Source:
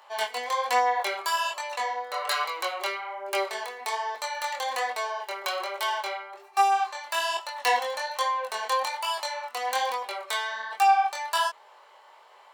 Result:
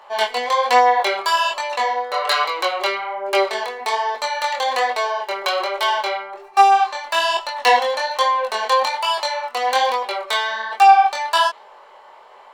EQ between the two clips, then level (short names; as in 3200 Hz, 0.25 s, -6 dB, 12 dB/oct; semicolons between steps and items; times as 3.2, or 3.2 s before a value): tilt -2.5 dB/oct; dynamic EQ 3900 Hz, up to +6 dB, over -47 dBFS, Q 0.97; +8.5 dB